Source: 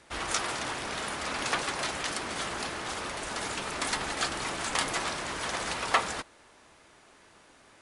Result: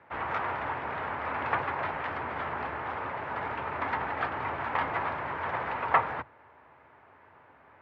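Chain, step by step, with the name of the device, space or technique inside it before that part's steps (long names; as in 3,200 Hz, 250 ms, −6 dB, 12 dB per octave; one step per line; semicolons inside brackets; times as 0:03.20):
sub-octave bass pedal (sub-octave generator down 2 octaves, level −1 dB; loudspeaker in its box 86–2,100 Hz, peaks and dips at 200 Hz −8 dB, 330 Hz −5 dB, 910 Hz +6 dB)
level +1 dB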